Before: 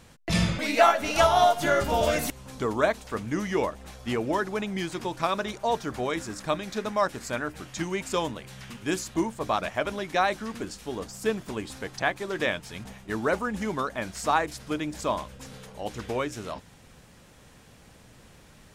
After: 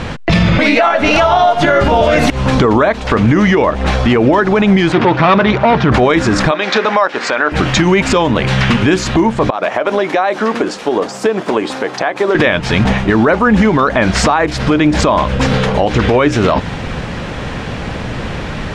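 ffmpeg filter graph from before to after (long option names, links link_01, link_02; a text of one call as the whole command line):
ffmpeg -i in.wav -filter_complex "[0:a]asettb=1/sr,asplit=3[link_01][link_02][link_03];[link_01]atrim=end=4.924[link_04];[link_02]atrim=start=4.92:end=5.92,asetpts=PTS-STARTPTS,afade=type=in:duration=0.004:curve=qsin,afade=type=out:start_time=0.996:duration=0.004:curve=qsin,asubboost=boost=12:cutoff=150,aeval=exprs='(tanh(31.6*val(0)+0.6)-tanh(0.6))/31.6':channel_layout=same,highpass=110,lowpass=3500[link_05];[link_03]atrim=start=5.916[link_06];[link_04][link_05]acrossfade=duration=0.004:curve1=hsin:curve2=qsin[link_07];[link_07][link_06]acrossfade=duration=0.004:curve1=qsin:curve2=hsin,asettb=1/sr,asplit=3[link_08][link_09][link_10];[link_08]atrim=end=6.514[link_11];[link_09]atrim=start=6.51:end=7.52,asetpts=PTS-STARTPTS,afade=type=in:duration=0.004:curve=qsin,afade=type=out:start_time=1.006:duration=0.004:curve=qsin,highpass=470,lowpass=5800,bandreject=frequency=650:width=21[link_12];[link_10]atrim=start=7.516[link_13];[link_11][link_12]acrossfade=duration=0.004:curve1=hsin:curve2=qsin[link_14];[link_14][link_13]acrossfade=duration=0.004:curve1=qsin:curve2=hsin,asettb=1/sr,asplit=3[link_15][link_16][link_17];[link_15]atrim=end=9.504[link_18];[link_16]atrim=start=9.5:end=12.35,asetpts=PTS-STARTPTS,afade=type=in:duration=0.004:curve=qsin,afade=type=out:start_time=2.846:duration=0.004:curve=qsin,highpass=460,equalizer=frequency=2800:width=0.3:gain=-10,acompressor=threshold=-40dB:ratio=16:attack=3.2:release=140:knee=1:detection=peak[link_19];[link_17]atrim=start=12.346[link_20];[link_18][link_19]acrossfade=duration=0.004:curve1=hsin:curve2=qsin[link_21];[link_21][link_20]acrossfade=duration=0.004:curve1=qsin:curve2=hsin,lowpass=3200,acompressor=threshold=-34dB:ratio=16,alimiter=level_in=33dB:limit=-1dB:release=50:level=0:latency=1,volume=-1dB" out.wav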